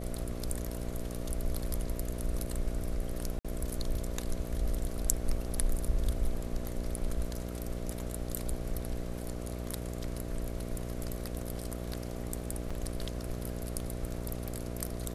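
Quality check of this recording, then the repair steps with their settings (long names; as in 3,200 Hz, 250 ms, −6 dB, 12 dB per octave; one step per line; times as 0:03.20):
mains buzz 60 Hz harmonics 11 −38 dBFS
0:03.39–0:03.45: drop-out 56 ms
0:12.70–0:12.71: drop-out 5.2 ms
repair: hum removal 60 Hz, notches 11
repair the gap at 0:03.39, 56 ms
repair the gap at 0:12.70, 5.2 ms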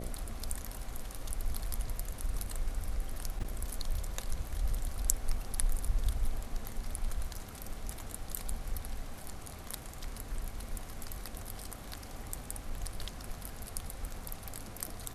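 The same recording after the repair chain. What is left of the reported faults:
none of them is left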